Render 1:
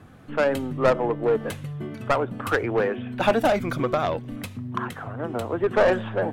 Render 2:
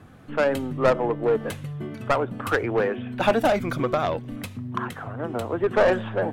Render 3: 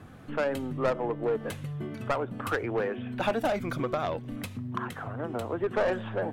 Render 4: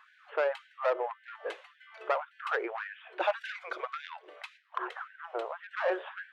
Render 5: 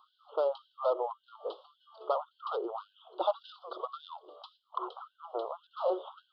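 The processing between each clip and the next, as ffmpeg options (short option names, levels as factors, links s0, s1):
-af anull
-af "acompressor=threshold=0.0141:ratio=1.5"
-af "lowpass=3400,afftfilt=real='re*gte(b*sr/1024,320*pow(1500/320,0.5+0.5*sin(2*PI*1.8*pts/sr)))':imag='im*gte(b*sr/1024,320*pow(1500/320,0.5+0.5*sin(2*PI*1.8*pts/sr)))':win_size=1024:overlap=0.75"
-af "aresample=11025,aresample=44100,asuperstop=centerf=2000:order=12:qfactor=1.1"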